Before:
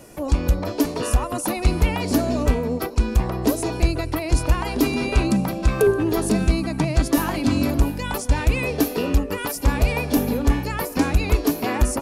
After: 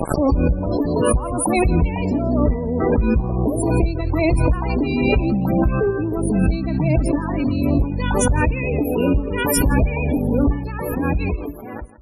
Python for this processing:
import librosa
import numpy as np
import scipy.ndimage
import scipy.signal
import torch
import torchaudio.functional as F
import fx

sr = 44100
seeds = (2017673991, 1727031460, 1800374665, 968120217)

p1 = fx.fade_out_tail(x, sr, length_s=1.55)
p2 = fx.low_shelf(p1, sr, hz=240.0, db=6.0)
p3 = fx.clip_asym(p2, sr, top_db=-12.0, bottom_db=-6.0)
p4 = fx.quant_dither(p3, sr, seeds[0], bits=6, dither='none')
p5 = fx.spec_topn(p4, sr, count=32)
p6 = p5 + fx.echo_single(p5, sr, ms=166, db=-16.0, dry=0)
p7 = fx.pre_swell(p6, sr, db_per_s=26.0)
y = p7 * librosa.db_to_amplitude(-4.0)